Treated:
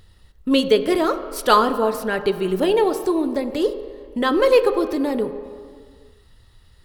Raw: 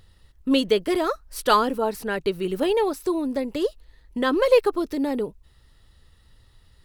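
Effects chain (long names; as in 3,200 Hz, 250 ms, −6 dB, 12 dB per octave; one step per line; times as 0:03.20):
on a send: low-shelf EQ 340 Hz −7.5 dB + convolution reverb RT60 2.2 s, pre-delay 3 ms, DRR 8.5 dB
on the sum: level +3 dB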